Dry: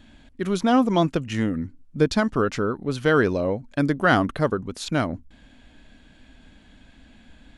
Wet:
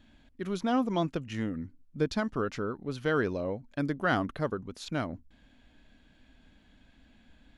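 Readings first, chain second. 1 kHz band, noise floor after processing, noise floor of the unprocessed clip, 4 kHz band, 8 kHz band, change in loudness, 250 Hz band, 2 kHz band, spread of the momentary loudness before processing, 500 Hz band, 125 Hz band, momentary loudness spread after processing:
−9.0 dB, −62 dBFS, −53 dBFS, −9.0 dB, −11.0 dB, −9.0 dB, −9.0 dB, −9.0 dB, 10 LU, −9.0 dB, −9.0 dB, 10 LU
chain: parametric band 8,600 Hz −5.5 dB 0.49 octaves
level −9 dB

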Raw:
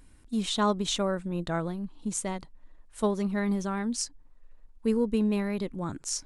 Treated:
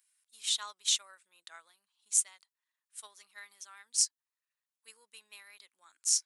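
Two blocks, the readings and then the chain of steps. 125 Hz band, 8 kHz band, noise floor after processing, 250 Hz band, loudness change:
below −40 dB, +5.5 dB, below −85 dBFS, below −40 dB, −0.5 dB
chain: high-pass filter 1,400 Hz 12 dB per octave
spectral tilt +4 dB per octave
expander for the loud parts 1.5 to 1, over −44 dBFS
level −4.5 dB

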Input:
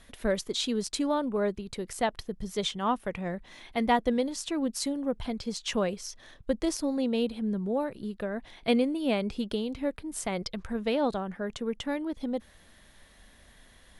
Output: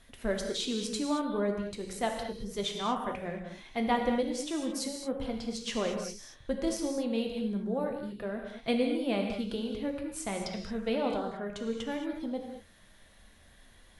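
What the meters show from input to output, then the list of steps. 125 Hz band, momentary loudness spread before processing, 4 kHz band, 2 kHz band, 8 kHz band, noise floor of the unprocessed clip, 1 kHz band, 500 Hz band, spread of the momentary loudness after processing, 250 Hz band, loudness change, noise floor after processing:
−2.5 dB, 9 LU, −2.5 dB, −2.5 dB, −2.5 dB, −57 dBFS, −3.0 dB, −2.5 dB, 8 LU, −2.5 dB, −2.5 dB, −58 dBFS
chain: flanger 0.35 Hz, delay 7.6 ms, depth 2.1 ms, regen −64%
reverb whose tail is shaped and stops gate 250 ms flat, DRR 2.5 dB

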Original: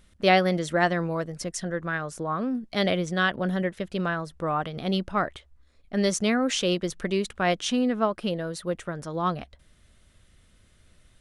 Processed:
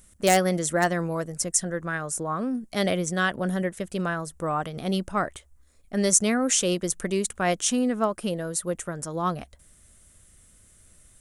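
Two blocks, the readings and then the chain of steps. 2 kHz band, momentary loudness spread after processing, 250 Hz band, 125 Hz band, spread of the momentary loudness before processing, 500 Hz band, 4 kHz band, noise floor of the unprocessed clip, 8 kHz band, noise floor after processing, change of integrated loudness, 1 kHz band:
−1.0 dB, 9 LU, 0.0 dB, 0.0 dB, 8 LU, 0.0 dB, −1.5 dB, −60 dBFS, +11.5 dB, −57 dBFS, +1.0 dB, −0.5 dB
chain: wave folding −11.5 dBFS
high shelf with overshoot 5,700 Hz +12 dB, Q 1.5

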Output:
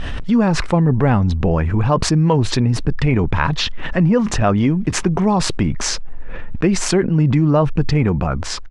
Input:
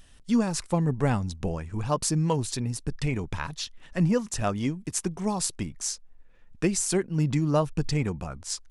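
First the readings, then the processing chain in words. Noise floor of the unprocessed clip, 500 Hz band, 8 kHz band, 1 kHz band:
−53 dBFS, +10.0 dB, +4.0 dB, +11.0 dB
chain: fade-out on the ending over 0.82 s
low-pass filter 2,400 Hz 12 dB per octave
envelope flattener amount 70%
level +7 dB

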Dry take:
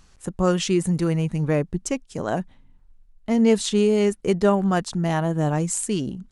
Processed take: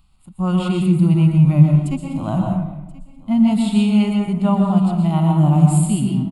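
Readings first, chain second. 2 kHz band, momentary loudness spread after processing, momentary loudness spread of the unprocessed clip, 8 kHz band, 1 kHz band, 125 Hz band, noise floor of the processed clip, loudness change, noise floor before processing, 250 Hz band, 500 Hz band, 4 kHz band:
−3.5 dB, 11 LU, 9 LU, can't be measured, +3.0 dB, +11.0 dB, −50 dBFS, +6.0 dB, −55 dBFS, +7.5 dB, −6.0 dB, −1.0 dB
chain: bass and treble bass +10 dB, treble +4 dB
harmonic and percussive parts rebalanced percussive −13 dB
low-shelf EQ 120 Hz −10 dB
automatic gain control gain up to 11.5 dB
phaser with its sweep stopped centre 1,700 Hz, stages 6
single-tap delay 1,030 ms −20.5 dB
dense smooth reverb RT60 0.93 s, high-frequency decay 0.5×, pre-delay 105 ms, DRR 0.5 dB
level −1.5 dB

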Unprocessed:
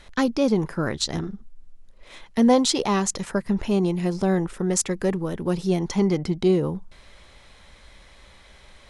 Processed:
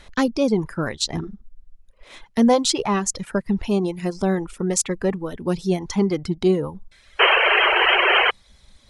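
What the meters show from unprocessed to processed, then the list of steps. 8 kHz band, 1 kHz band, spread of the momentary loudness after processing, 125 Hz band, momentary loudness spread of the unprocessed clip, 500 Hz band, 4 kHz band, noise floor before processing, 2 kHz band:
+2.0 dB, +7.5 dB, 12 LU, −0.5 dB, 8 LU, +2.0 dB, +9.5 dB, −51 dBFS, +15.5 dB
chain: sound drawn into the spectrogram noise, 0:07.19–0:08.31, 350–3,200 Hz −16 dBFS
reverb reduction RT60 1.2 s
level +2 dB

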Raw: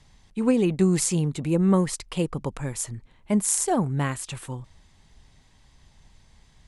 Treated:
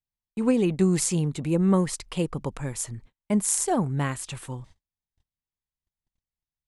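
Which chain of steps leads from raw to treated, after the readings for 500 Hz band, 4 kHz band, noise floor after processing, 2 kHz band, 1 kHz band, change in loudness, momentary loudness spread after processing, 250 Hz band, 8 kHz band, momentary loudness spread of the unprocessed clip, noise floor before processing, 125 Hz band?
−1.0 dB, −1.0 dB, below −85 dBFS, −1.0 dB, −1.0 dB, −1.0 dB, 14 LU, −1.0 dB, −1.0 dB, 14 LU, −58 dBFS, −1.0 dB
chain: noise gate −46 dBFS, range −40 dB
level −1 dB

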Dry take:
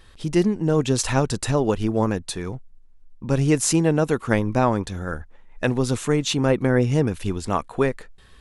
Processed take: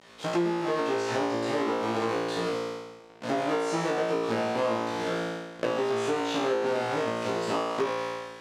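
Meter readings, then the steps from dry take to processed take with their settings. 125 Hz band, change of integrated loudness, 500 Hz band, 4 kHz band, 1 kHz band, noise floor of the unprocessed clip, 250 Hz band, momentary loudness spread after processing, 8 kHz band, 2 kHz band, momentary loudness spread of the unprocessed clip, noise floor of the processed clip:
−17.5 dB, −6.5 dB, −3.5 dB, −4.5 dB, −1.0 dB, −49 dBFS, −9.0 dB, 5 LU, −14.5 dB, −3.0 dB, 11 LU, −49 dBFS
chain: each half-wave held at its own peak
de-essing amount 50%
band-pass filter 350–6,100 Hz
on a send: flutter between parallel walls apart 3 metres, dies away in 1.1 s
on the sum: downward compressor 4 to 1, threshold −24 dBFS, peak gain reduction 13 dB
level −2 dB

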